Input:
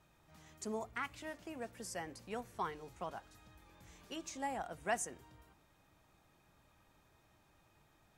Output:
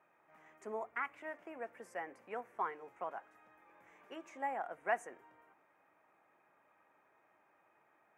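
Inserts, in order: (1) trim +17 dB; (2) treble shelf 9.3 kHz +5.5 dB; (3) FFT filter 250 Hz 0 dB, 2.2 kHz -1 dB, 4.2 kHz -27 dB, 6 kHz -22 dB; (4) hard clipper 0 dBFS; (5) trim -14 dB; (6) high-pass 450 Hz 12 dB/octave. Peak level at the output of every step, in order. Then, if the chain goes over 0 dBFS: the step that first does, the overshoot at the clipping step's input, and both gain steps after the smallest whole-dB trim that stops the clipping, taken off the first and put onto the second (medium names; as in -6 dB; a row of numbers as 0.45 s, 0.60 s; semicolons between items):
-4.5 dBFS, -4.5 dBFS, -5.5 dBFS, -5.5 dBFS, -19.5 dBFS, -21.0 dBFS; nothing clips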